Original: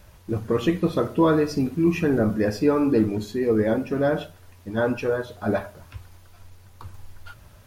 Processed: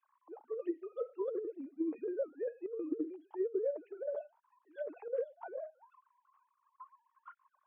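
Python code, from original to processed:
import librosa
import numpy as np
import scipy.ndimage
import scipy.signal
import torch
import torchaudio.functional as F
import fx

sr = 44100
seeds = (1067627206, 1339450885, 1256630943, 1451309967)

y = fx.sine_speech(x, sr)
y = fx.auto_wah(y, sr, base_hz=460.0, top_hz=1100.0, q=16.0, full_db=-16.5, direction='down')
y = fx.over_compress(y, sr, threshold_db=-36.0, ratio=-1.0)
y = F.gain(torch.from_numpy(y), -1.0).numpy()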